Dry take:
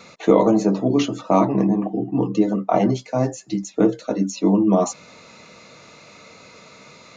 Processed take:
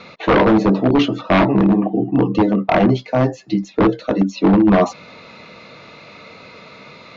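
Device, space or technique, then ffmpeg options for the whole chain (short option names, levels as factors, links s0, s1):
synthesiser wavefolder: -af "aeval=exprs='0.251*(abs(mod(val(0)/0.251+3,4)-2)-1)':c=same,lowpass=f=4000:w=0.5412,lowpass=f=4000:w=1.3066,highshelf=f=5400:g=5,volume=1.88"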